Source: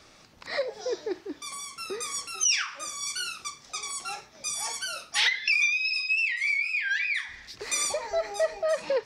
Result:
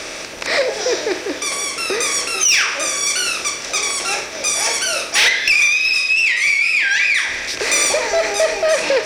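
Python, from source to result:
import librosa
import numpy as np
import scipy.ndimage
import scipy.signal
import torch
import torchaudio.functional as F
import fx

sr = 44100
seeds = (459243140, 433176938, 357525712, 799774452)

p1 = fx.bin_compress(x, sr, power=0.6)
p2 = 10.0 ** (-14.5 / 20.0) * np.tanh(p1 / 10.0 ** (-14.5 / 20.0))
p3 = p2 + fx.echo_filtered(p2, sr, ms=353, feedback_pct=71, hz=3700.0, wet_db=-19.0, dry=0)
y = p3 * librosa.db_to_amplitude(9.0)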